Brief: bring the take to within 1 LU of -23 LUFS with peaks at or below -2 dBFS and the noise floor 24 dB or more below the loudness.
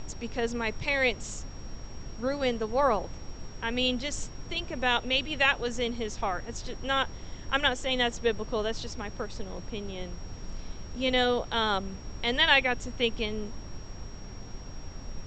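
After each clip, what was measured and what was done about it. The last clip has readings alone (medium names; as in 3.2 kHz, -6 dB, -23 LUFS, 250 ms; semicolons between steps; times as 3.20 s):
steady tone 5.6 kHz; tone level -52 dBFS; noise floor -43 dBFS; noise floor target -53 dBFS; loudness -29.0 LUFS; peak level -6.5 dBFS; loudness target -23.0 LUFS
-> band-stop 5.6 kHz, Q 30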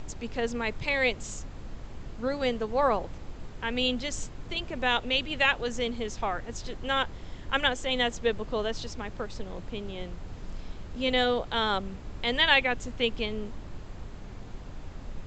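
steady tone not found; noise floor -43 dBFS; noise floor target -53 dBFS
-> noise print and reduce 10 dB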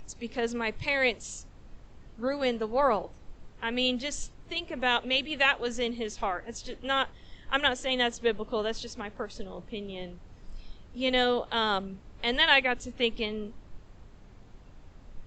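noise floor -52 dBFS; noise floor target -53 dBFS
-> noise print and reduce 6 dB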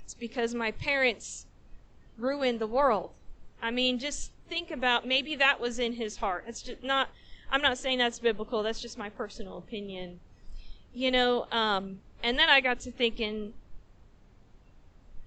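noise floor -57 dBFS; loudness -29.0 LUFS; peak level -6.5 dBFS; loudness target -23.0 LUFS
-> trim +6 dB; peak limiter -2 dBFS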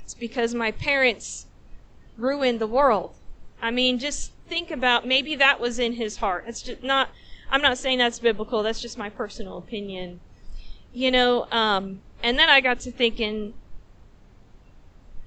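loudness -23.0 LUFS; peak level -2.0 dBFS; noise floor -51 dBFS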